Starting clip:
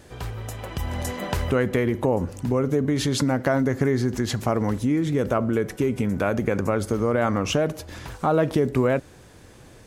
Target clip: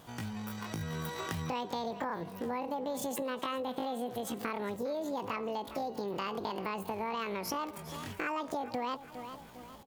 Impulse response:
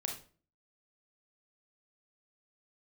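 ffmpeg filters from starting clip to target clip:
-af "asetrate=85689,aresample=44100,atempo=0.514651,aecho=1:1:405|810|1215:0.119|0.0499|0.021,acompressor=threshold=-29dB:ratio=3,volume=-6dB"

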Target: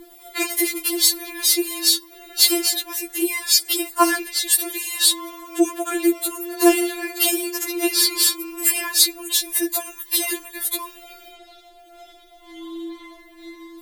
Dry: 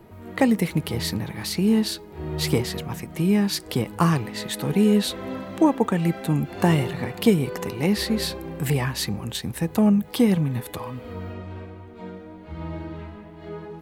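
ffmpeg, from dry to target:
ffmpeg -i in.wav -af "crystalizer=i=4.5:c=0,afftfilt=real='re*4*eq(mod(b,16),0)':imag='im*4*eq(mod(b,16),0)':win_size=2048:overlap=0.75,volume=3.5dB" out.wav

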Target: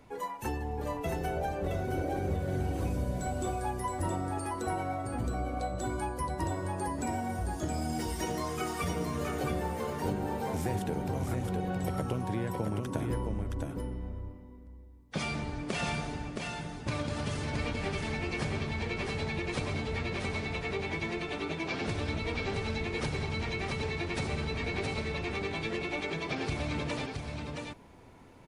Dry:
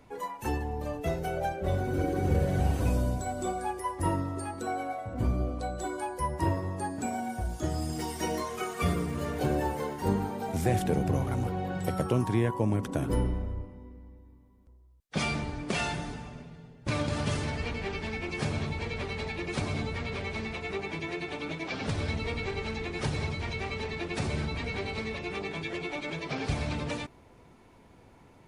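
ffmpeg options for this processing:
ffmpeg -i in.wav -af "acompressor=threshold=-30dB:ratio=6,aecho=1:1:669:0.631" out.wav

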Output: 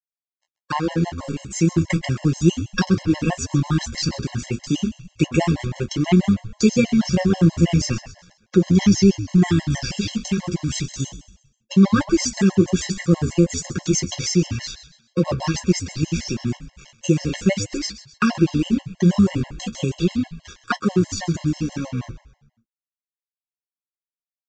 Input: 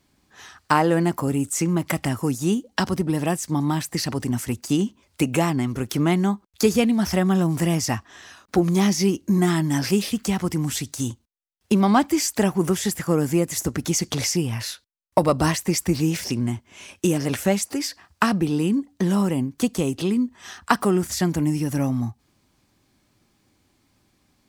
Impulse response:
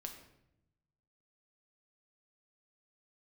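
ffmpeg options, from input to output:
-filter_complex "[0:a]equalizer=frequency=880:width=0.8:gain=-7,aecho=1:1:5.6:0.56,dynaudnorm=framelen=450:gausssize=5:maxgain=11.5dB,acrusher=bits=4:mix=0:aa=0.5,flanger=delay=9.6:depth=9:regen=-41:speed=0.34:shape=sinusoidal,asplit=2[link_01][link_02];[link_02]asplit=4[link_03][link_04][link_05][link_06];[link_03]adelay=129,afreqshift=-86,volume=-14dB[link_07];[link_04]adelay=258,afreqshift=-172,volume=-22.4dB[link_08];[link_05]adelay=387,afreqshift=-258,volume=-30.8dB[link_09];[link_06]adelay=516,afreqshift=-344,volume=-39.2dB[link_10];[link_07][link_08][link_09][link_10]amix=inputs=4:normalize=0[link_11];[link_01][link_11]amix=inputs=2:normalize=0,aresample=16000,aresample=44100,afftfilt=real='re*gt(sin(2*PI*6.2*pts/sr)*(1-2*mod(floor(b*sr/1024/550),2)),0)':imag='im*gt(sin(2*PI*6.2*pts/sr)*(1-2*mod(floor(b*sr/1024/550),2)),0)':win_size=1024:overlap=0.75,volume=2dB"

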